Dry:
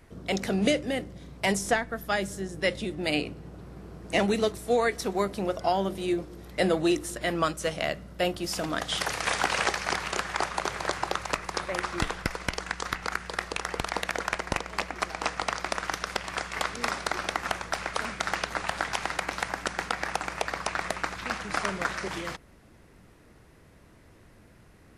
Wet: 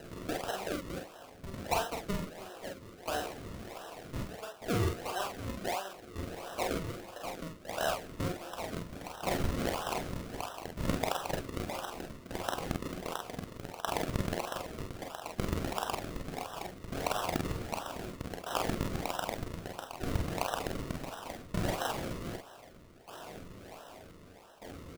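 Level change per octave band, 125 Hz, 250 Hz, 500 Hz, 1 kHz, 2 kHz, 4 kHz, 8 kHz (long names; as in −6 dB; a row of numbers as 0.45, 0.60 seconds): 0.0, −6.5, −7.5, −7.0, −12.0, −9.0, −8.0 decibels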